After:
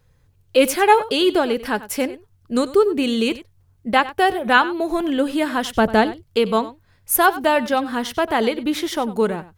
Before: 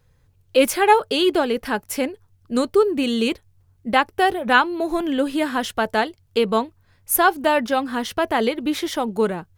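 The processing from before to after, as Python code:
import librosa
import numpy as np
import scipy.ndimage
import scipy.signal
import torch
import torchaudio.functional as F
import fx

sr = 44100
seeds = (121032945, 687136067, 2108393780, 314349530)

p1 = fx.low_shelf(x, sr, hz=430.0, db=11.0, at=(5.75, 6.23))
p2 = p1 + fx.echo_single(p1, sr, ms=95, db=-16.5, dry=0)
y = F.gain(torch.from_numpy(p2), 1.0).numpy()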